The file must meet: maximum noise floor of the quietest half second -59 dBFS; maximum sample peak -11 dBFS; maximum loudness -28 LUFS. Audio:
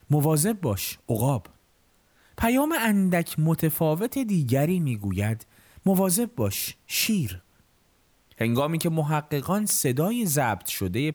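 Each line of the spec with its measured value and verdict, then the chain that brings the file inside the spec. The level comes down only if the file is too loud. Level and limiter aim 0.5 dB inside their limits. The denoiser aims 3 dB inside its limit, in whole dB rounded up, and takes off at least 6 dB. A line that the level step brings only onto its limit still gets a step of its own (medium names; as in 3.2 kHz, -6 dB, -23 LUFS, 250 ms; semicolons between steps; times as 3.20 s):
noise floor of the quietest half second -63 dBFS: pass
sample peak -9.0 dBFS: fail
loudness -25.0 LUFS: fail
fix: trim -3.5 dB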